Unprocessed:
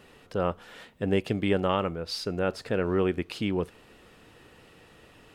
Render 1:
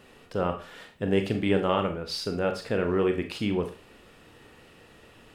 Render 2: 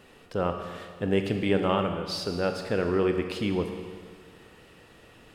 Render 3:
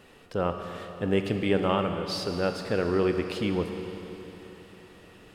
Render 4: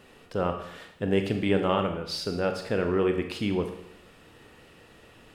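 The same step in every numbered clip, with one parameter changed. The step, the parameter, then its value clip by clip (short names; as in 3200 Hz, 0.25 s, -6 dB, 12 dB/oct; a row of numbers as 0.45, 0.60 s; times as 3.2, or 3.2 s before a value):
Schroeder reverb, RT60: 0.34, 1.8, 3.8, 0.74 s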